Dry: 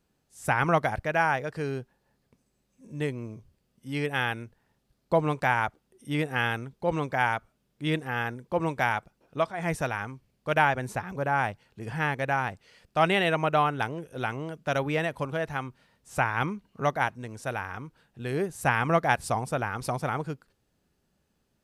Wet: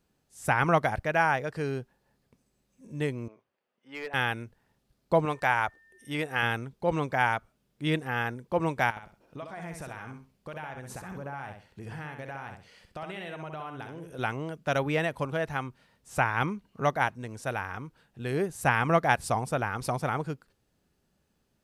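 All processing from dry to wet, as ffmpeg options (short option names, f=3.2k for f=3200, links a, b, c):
-filter_complex "[0:a]asettb=1/sr,asplit=3[a][b][c];[a]atrim=end=3.284[d];[b]atrim=start=3.28:end=4.14,asetpts=PTS-STARTPTS,afade=t=in:d=0.004:c=qsin,afade=t=out:st=0.856:d=0.004:c=qsin,highpass=590,lowpass=2.3k,asoftclip=type=hard:threshold=-30.5dB[e];[c]atrim=start=4.136[f];[d][e]acrossfade=d=0.004:c1=hsin:c2=qsin[g];[g][f]acrossfade=d=0.004:c1=qsin:c2=hsin,asettb=1/sr,asplit=3[h][i][j];[h]atrim=end=5.254[k];[i]atrim=start=5.25:end=6.43,asetpts=PTS-STARTPTS,afade=t=in:d=0.004:c=qsin,afade=t=out:st=1.176:d=0.004:c=qsin,equalizer=f=180:w=0.74:g=-7.5,aeval=exprs='val(0)+0.00126*sin(2*PI*1800*n/s)':c=same[l];[j]atrim=start=6.426[m];[k][l]acrossfade=d=0.004:c1=hsin:c2=qsin[n];[n][m]acrossfade=d=0.004:c1=qsin:c2=hsin,asettb=1/sr,asplit=3[o][p][q];[o]atrim=end=8.904[r];[p]atrim=start=8.9:end=14.19,asetpts=PTS-STARTPTS,afade=t=in:d=0.004:c=qsin,afade=t=out:st=5.286:d=0.004:c=qsin,acompressor=threshold=-37dB:ratio=6:attack=3.2:release=140:knee=1:detection=peak,aecho=1:1:65|130|195:0.501|0.12|0.0289,atrim=end_sample=233289[s];[q]atrim=start=14.186[t];[r][s]acrossfade=d=0.004:c1=hsin:c2=qsin[u];[u][t]acrossfade=d=0.004:c1=qsin:c2=hsin"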